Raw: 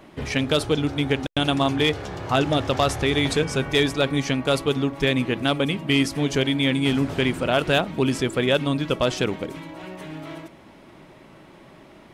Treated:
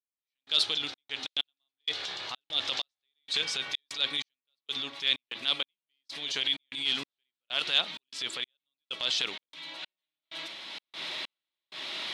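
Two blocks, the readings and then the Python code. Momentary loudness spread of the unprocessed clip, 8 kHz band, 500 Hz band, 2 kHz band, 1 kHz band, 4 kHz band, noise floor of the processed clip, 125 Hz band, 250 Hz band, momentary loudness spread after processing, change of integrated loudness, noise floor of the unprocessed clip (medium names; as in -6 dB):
11 LU, -8.0 dB, -24.0 dB, -9.5 dB, -16.5 dB, -1.0 dB, under -85 dBFS, -32.5 dB, -27.5 dB, 14 LU, -9.0 dB, -48 dBFS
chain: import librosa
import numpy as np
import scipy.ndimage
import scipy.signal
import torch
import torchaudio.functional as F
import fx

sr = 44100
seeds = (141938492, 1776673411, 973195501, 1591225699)

y = fx.recorder_agc(x, sr, target_db=-17.0, rise_db_per_s=25.0, max_gain_db=30)
y = fx.bandpass_q(y, sr, hz=3800.0, q=3.6)
y = fx.step_gate(y, sr, bpm=96, pattern='...xxx.xx', floor_db=-60.0, edge_ms=4.5)
y = fx.transient(y, sr, attack_db=-8, sustain_db=5)
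y = F.gain(torch.from_numpy(y), 8.0).numpy()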